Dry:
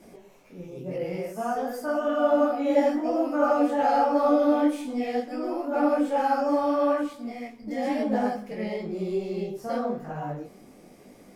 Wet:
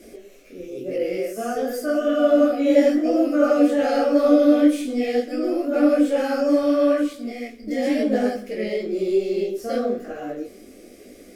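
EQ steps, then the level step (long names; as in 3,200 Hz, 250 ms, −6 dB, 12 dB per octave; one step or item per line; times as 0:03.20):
phaser with its sweep stopped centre 380 Hz, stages 4
+8.5 dB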